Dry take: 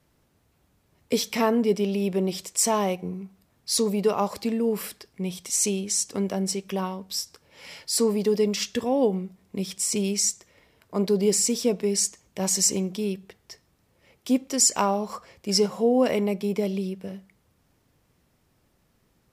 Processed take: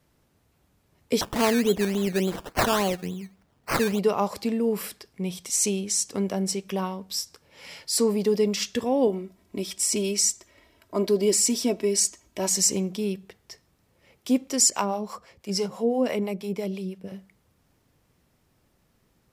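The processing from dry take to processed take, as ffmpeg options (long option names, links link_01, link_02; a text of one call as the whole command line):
ffmpeg -i in.wav -filter_complex "[0:a]asettb=1/sr,asplit=3[link_01][link_02][link_03];[link_01]atrim=end=1.214[link_04];[link_02]atrim=start=1.21:end=3.99,asetpts=PTS-STARTPTS,afade=type=in:duration=0.004:curve=qsin,afade=type=out:start_time=2.776:duration=0.004:curve=qsin,acrusher=samples=17:mix=1:aa=0.000001:lfo=1:lforange=10.2:lforate=3.5[link_05];[link_03]atrim=start=3.986[link_06];[link_04][link_05]acrossfade=duration=0.004:curve1=hsin:curve2=qsin[link_07];[link_07][link_06]acrossfade=duration=0.004:curve1=qsin:curve2=hsin,asettb=1/sr,asplit=3[link_08][link_09][link_10];[link_08]atrim=end=9.074[link_11];[link_09]atrim=start=9.07:end=12.48,asetpts=PTS-STARTPTS,afade=type=in:duration=0.004:curve=qsin,afade=type=out:start_time=3.406:duration=0.004:curve=qsin,aecho=1:1:3.1:0.65,atrim=end_sample=150381[link_12];[link_10]atrim=start=12.476[link_13];[link_11][link_12]acrossfade=duration=0.004:curve1=hsin:curve2=qsin[link_14];[link_14][link_13]acrossfade=duration=0.004:curve1=qsin:curve2=hsin,asettb=1/sr,asplit=3[link_15][link_16][link_17];[link_15]atrim=end=14.704[link_18];[link_16]atrim=start=14.7:end=17.12,asetpts=PTS-STARTPTS,afade=type=in:duration=0.004:curve=qsin,afade=type=out:start_time=2.416:duration=0.004:curve=qsin,acrossover=split=530[link_19][link_20];[link_19]aeval=exprs='val(0)*(1-0.7/2+0.7/2*cos(2*PI*6*n/s))':channel_layout=same[link_21];[link_20]aeval=exprs='val(0)*(1-0.7/2-0.7/2*cos(2*PI*6*n/s))':channel_layout=same[link_22];[link_21][link_22]amix=inputs=2:normalize=0[link_23];[link_17]atrim=start=17.116[link_24];[link_18][link_23]acrossfade=duration=0.004:curve1=hsin:curve2=qsin[link_25];[link_25][link_24]acrossfade=duration=0.004:curve1=qsin:curve2=hsin" out.wav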